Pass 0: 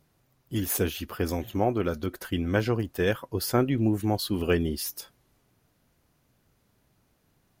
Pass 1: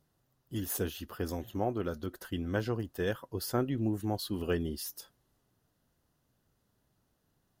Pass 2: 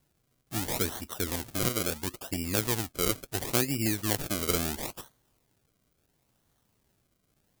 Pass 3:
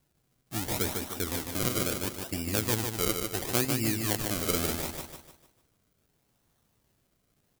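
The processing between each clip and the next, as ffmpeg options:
ffmpeg -i in.wav -af "equalizer=frequency=2300:width=7.3:gain=-11.5,volume=-7dB" out.wav
ffmpeg -i in.wav -af "acrusher=samples=34:mix=1:aa=0.000001:lfo=1:lforange=34:lforate=0.73,crystalizer=i=3.5:c=0,volume=1dB" out.wav
ffmpeg -i in.wav -af "aecho=1:1:150|300|450|600|750:0.562|0.219|0.0855|0.0334|0.013,volume=-1dB" out.wav

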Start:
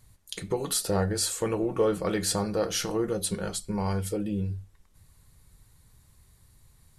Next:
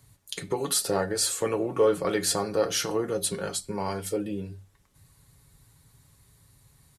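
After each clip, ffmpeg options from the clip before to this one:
ffmpeg -i in.wav -filter_complex "[0:a]highpass=52,aecho=1:1:7.2:0.42,acrossover=split=200|5000[link_01][link_02][link_03];[link_01]acompressor=threshold=-43dB:ratio=6[link_04];[link_04][link_02][link_03]amix=inputs=3:normalize=0,volume=1.5dB" out.wav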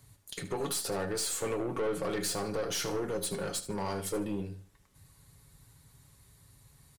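ffmpeg -i in.wav -af "alimiter=limit=-19dB:level=0:latency=1:release=99,aeval=exprs='(tanh(25.1*val(0)+0.3)-tanh(0.3))/25.1':channel_layout=same,aecho=1:1:76|152|228:0.2|0.0579|0.0168" out.wav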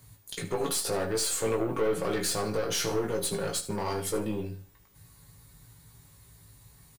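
ffmpeg -i in.wav -filter_complex "[0:a]aeval=exprs='val(0)+0.000501*sin(2*PI*15000*n/s)':channel_layout=same,asplit=2[link_01][link_02];[link_02]adelay=18,volume=-4.5dB[link_03];[link_01][link_03]amix=inputs=2:normalize=0,volume=2.5dB" out.wav

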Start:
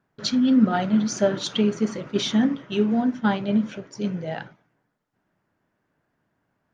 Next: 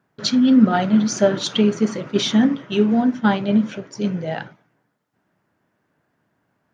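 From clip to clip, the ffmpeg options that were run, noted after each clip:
ffmpeg -i in.wav -af "highpass=77,volume=4.5dB" out.wav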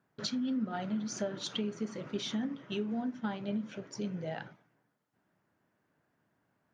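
ffmpeg -i in.wav -af "acompressor=threshold=-28dB:ratio=3,volume=-7.5dB" out.wav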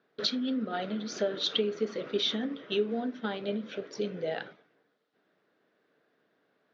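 ffmpeg -i in.wav -af "highpass=290,equalizer=frequency=450:width_type=q:width=4:gain=8,equalizer=frequency=920:width_type=q:width=4:gain=-8,equalizer=frequency=3700:width_type=q:width=4:gain=7,lowpass=frequency=5100:width=0.5412,lowpass=frequency=5100:width=1.3066,volume=5.5dB" out.wav

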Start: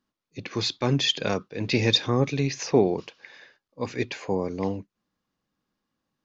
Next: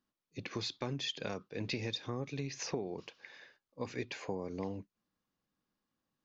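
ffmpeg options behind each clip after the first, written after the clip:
ffmpeg -i in.wav -af "acompressor=threshold=-28dB:ratio=10,volume=-6dB" out.wav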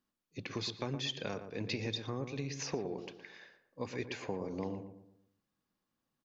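ffmpeg -i in.wav -filter_complex "[0:a]asplit=2[link_01][link_02];[link_02]adelay=117,lowpass=frequency=1200:poles=1,volume=-7.5dB,asplit=2[link_03][link_04];[link_04]adelay=117,lowpass=frequency=1200:poles=1,volume=0.43,asplit=2[link_05][link_06];[link_06]adelay=117,lowpass=frequency=1200:poles=1,volume=0.43,asplit=2[link_07][link_08];[link_08]adelay=117,lowpass=frequency=1200:poles=1,volume=0.43,asplit=2[link_09][link_10];[link_10]adelay=117,lowpass=frequency=1200:poles=1,volume=0.43[link_11];[link_01][link_03][link_05][link_07][link_09][link_11]amix=inputs=6:normalize=0" out.wav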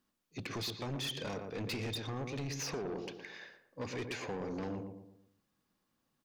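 ffmpeg -i in.wav -af "asoftclip=type=tanh:threshold=-39.5dB,volume=5dB" out.wav

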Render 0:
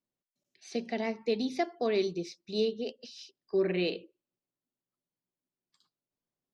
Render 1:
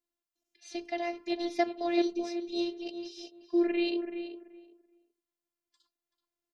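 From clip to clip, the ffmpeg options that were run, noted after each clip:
ffmpeg -i in.wav -filter_complex "[0:a]asplit=2[link_01][link_02];[link_02]adelay=381,lowpass=frequency=1800:poles=1,volume=-8dB,asplit=2[link_03][link_04];[link_04]adelay=381,lowpass=frequency=1800:poles=1,volume=0.19,asplit=2[link_05][link_06];[link_06]adelay=381,lowpass=frequency=1800:poles=1,volume=0.19[link_07];[link_01][link_03][link_05][link_07]amix=inputs=4:normalize=0,afftfilt=real='hypot(re,im)*cos(PI*b)':imag='0':win_size=512:overlap=0.75,volume=3dB" out.wav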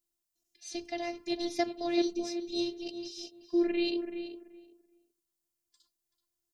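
ffmpeg -i in.wav -af "bass=frequency=250:gain=11,treble=frequency=4000:gain=12,volume=-3.5dB" out.wav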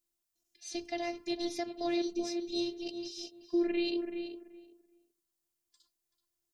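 ffmpeg -i in.wav -af "alimiter=limit=-22.5dB:level=0:latency=1:release=192" out.wav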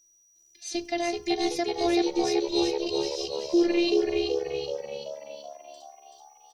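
ffmpeg -i in.wav -filter_complex "[0:a]aeval=exprs='val(0)+0.000447*sin(2*PI*5800*n/s)':channel_layout=same,asplit=2[link_01][link_02];[link_02]asplit=7[link_03][link_04][link_05][link_06][link_07][link_08][link_09];[link_03]adelay=380,afreqshift=72,volume=-5dB[link_10];[link_04]adelay=760,afreqshift=144,volume=-10dB[link_11];[link_05]adelay=1140,afreqshift=216,volume=-15.1dB[link_12];[link_06]adelay=1520,afreqshift=288,volume=-20.1dB[link_13];[link_07]adelay=1900,afreqshift=360,volume=-25.1dB[link_14];[link_08]adelay=2280,afreqshift=432,volume=-30.2dB[link_15];[link_09]adelay=2660,afreqshift=504,volume=-35.2dB[link_16];[link_10][link_11][link_12][link_13][link_14][link_15][link_16]amix=inputs=7:normalize=0[link_17];[link_01][link_17]amix=inputs=2:normalize=0,volume=7.5dB" out.wav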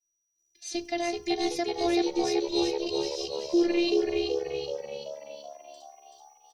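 ffmpeg -i in.wav -af "agate=range=-33dB:threshold=-52dB:ratio=3:detection=peak,volume=-1.5dB" out.wav

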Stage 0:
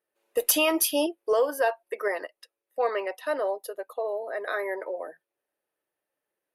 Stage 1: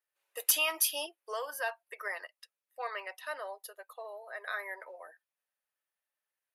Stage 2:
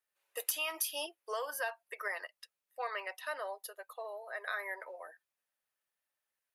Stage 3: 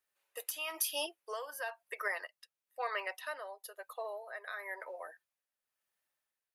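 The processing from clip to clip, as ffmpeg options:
ffmpeg -i in.wav -af "highpass=1100,volume=-3.5dB" out.wav
ffmpeg -i in.wav -af "acompressor=threshold=-33dB:ratio=6,volume=1dB" out.wav
ffmpeg -i in.wav -af "tremolo=f=1:d=0.6,volume=2.5dB" out.wav

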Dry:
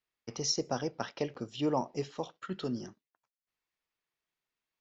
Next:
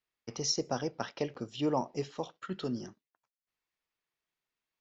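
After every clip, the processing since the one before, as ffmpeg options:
ffmpeg -i in.wav -af anull out.wav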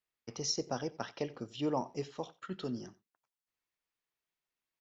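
ffmpeg -i in.wav -af "aecho=1:1:90:0.0891,volume=-3dB" out.wav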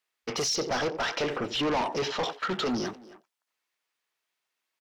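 ffmpeg -i in.wav -filter_complex "[0:a]asplit=2[link_01][link_02];[link_02]highpass=frequency=720:poles=1,volume=33dB,asoftclip=type=tanh:threshold=-20.5dB[link_03];[link_01][link_03]amix=inputs=2:normalize=0,lowpass=frequency=6700:poles=1,volume=-6dB,afwtdn=0.01,asplit=2[link_04][link_05];[link_05]adelay=270,highpass=300,lowpass=3400,asoftclip=type=hard:threshold=-30.5dB,volume=-15dB[link_06];[link_04][link_06]amix=inputs=2:normalize=0" out.wav

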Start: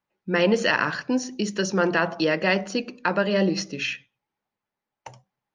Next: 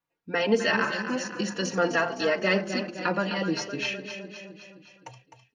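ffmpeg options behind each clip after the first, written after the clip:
ffmpeg -i in.wav -filter_complex "[0:a]aecho=1:1:257|514|771|1028|1285|1542|1799:0.335|0.191|0.109|0.062|0.0354|0.0202|0.0115,asplit=2[link_01][link_02];[link_02]adelay=3.7,afreqshift=-0.6[link_03];[link_01][link_03]amix=inputs=2:normalize=1" out.wav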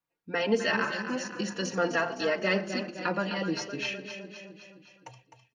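ffmpeg -i in.wav -filter_complex "[0:a]asplit=2[link_01][link_02];[link_02]adelay=122.4,volume=-24dB,highshelf=frequency=4000:gain=-2.76[link_03];[link_01][link_03]amix=inputs=2:normalize=0,volume=-3dB" out.wav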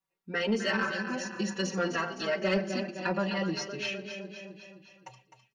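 ffmpeg -i in.wav -af "aecho=1:1:5.2:0.94,asoftclip=type=tanh:threshold=-13.5dB,volume=-3.5dB" out.wav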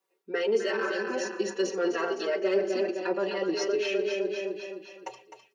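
ffmpeg -i in.wav -af "areverse,acompressor=threshold=-38dB:ratio=4,areverse,highpass=frequency=400:width_type=q:width=4.9,volume=6.5dB" out.wav

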